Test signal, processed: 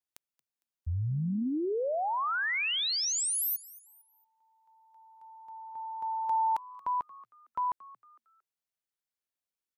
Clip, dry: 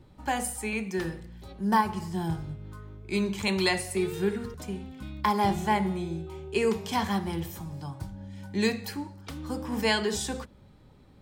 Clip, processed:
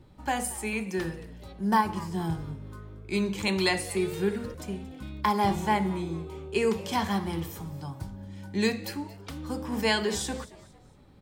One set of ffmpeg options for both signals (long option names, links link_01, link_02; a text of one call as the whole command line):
ffmpeg -i in.wav -filter_complex "[0:a]asplit=4[link_01][link_02][link_03][link_04];[link_02]adelay=228,afreqshift=110,volume=-20dB[link_05];[link_03]adelay=456,afreqshift=220,volume=-28.9dB[link_06];[link_04]adelay=684,afreqshift=330,volume=-37.7dB[link_07];[link_01][link_05][link_06][link_07]amix=inputs=4:normalize=0" out.wav